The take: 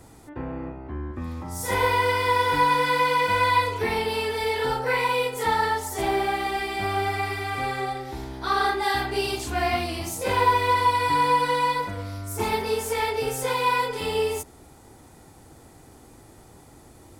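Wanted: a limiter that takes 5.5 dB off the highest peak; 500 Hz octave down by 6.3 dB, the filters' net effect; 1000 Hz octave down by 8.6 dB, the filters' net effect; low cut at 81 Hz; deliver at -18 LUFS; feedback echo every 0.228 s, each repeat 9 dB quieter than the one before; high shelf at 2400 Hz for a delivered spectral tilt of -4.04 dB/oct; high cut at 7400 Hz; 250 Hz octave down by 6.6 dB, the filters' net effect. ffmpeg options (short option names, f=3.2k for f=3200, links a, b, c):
-af "highpass=81,lowpass=7.4k,equalizer=f=250:t=o:g=-7,equalizer=f=500:t=o:g=-3.5,equalizer=f=1k:t=o:g=-7.5,highshelf=f=2.4k:g=-4.5,alimiter=limit=-21.5dB:level=0:latency=1,aecho=1:1:228|456|684|912:0.355|0.124|0.0435|0.0152,volume=13dB"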